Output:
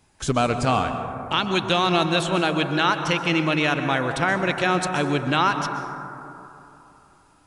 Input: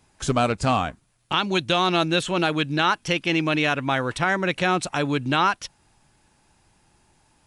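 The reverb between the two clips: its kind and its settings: plate-style reverb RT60 3 s, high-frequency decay 0.25×, pre-delay 110 ms, DRR 6.5 dB

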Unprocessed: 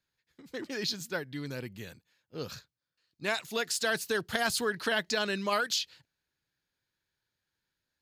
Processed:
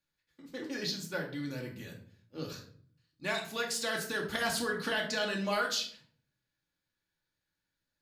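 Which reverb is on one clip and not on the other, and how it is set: simulated room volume 600 m³, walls furnished, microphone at 2.4 m; trim -5 dB

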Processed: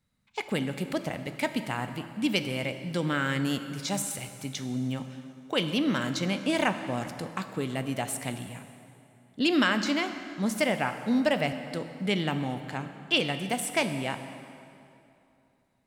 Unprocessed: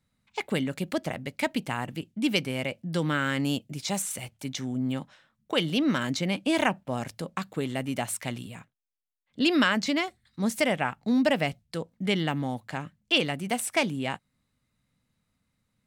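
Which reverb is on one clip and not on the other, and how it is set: plate-style reverb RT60 2.8 s, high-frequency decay 0.75×, DRR 8 dB; trim -1.5 dB

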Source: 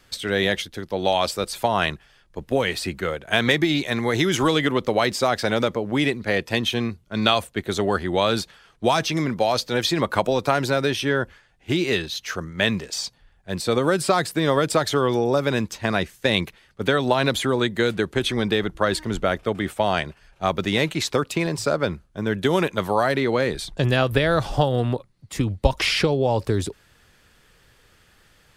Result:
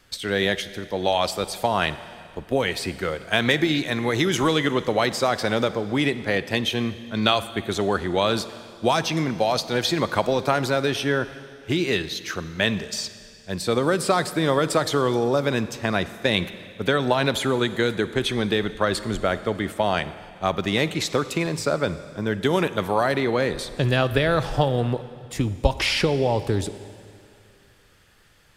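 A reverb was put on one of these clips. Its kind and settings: Schroeder reverb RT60 2.4 s, DRR 13.5 dB; trim -1 dB

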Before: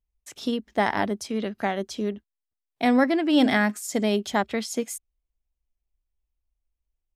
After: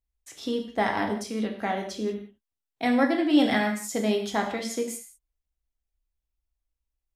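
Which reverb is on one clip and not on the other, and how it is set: gated-style reverb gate 220 ms falling, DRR 2 dB; trim -4 dB

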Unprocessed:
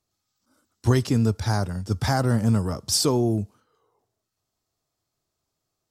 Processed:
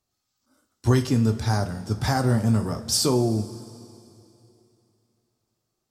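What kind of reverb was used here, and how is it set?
two-slope reverb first 0.28 s, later 2.9 s, from -18 dB, DRR 5.5 dB; trim -1 dB

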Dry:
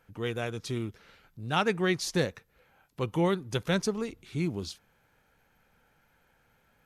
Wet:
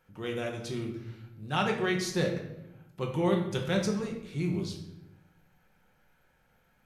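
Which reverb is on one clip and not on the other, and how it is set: simulated room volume 300 m³, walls mixed, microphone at 1 m; trim -4 dB

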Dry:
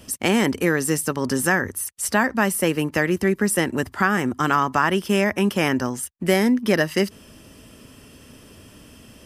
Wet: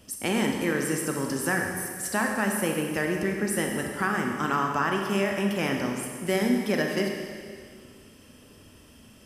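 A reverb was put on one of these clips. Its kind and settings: Schroeder reverb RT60 2 s, combs from 29 ms, DRR 1.5 dB; trim -8 dB

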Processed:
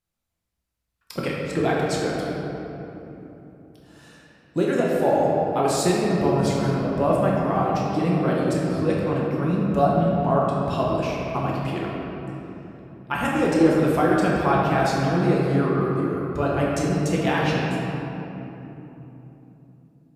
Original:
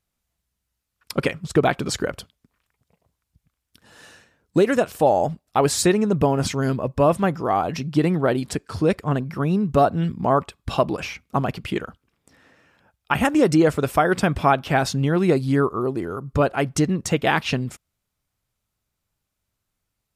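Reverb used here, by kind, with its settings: simulated room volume 190 m³, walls hard, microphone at 0.85 m; trim -8 dB

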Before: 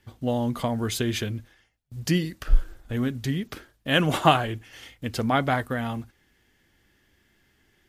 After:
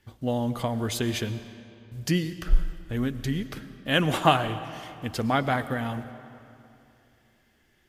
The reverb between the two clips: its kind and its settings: algorithmic reverb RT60 2.8 s, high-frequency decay 0.7×, pre-delay 70 ms, DRR 12.5 dB; trim -1.5 dB

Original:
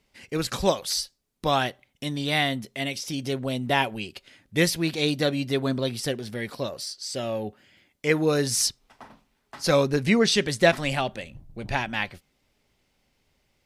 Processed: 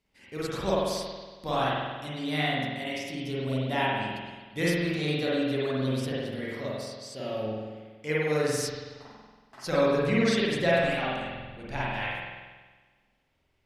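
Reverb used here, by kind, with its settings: spring tank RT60 1.4 s, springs 46 ms, chirp 75 ms, DRR -7.5 dB; trim -11 dB

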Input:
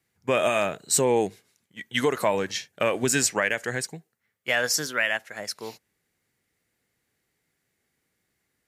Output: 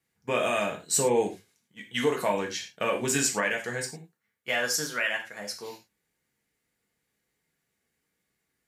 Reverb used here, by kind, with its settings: gated-style reverb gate 130 ms falling, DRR 0.5 dB; trim -5.5 dB

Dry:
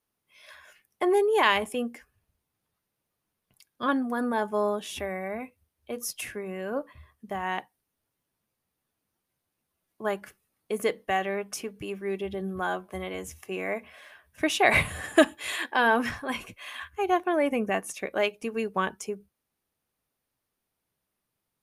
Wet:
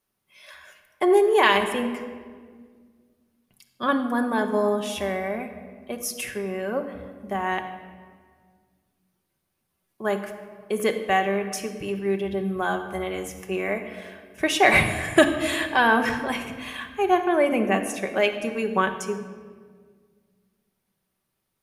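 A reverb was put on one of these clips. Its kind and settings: simulated room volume 2300 m³, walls mixed, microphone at 1.1 m; trim +3 dB

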